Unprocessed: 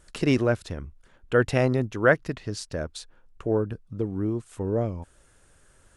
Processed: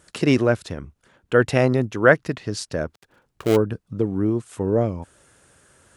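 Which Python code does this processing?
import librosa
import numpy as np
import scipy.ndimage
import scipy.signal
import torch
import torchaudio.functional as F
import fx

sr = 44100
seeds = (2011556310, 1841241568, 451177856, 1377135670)

p1 = fx.dead_time(x, sr, dead_ms=0.23, at=(2.89, 3.55), fade=0.02)
p2 = scipy.signal.sosfilt(scipy.signal.butter(2, 98.0, 'highpass', fs=sr, output='sos'), p1)
p3 = fx.rider(p2, sr, range_db=4, speed_s=2.0)
p4 = p2 + (p3 * 10.0 ** (-0.5 / 20.0))
y = p4 * 10.0 ** (-1.0 / 20.0)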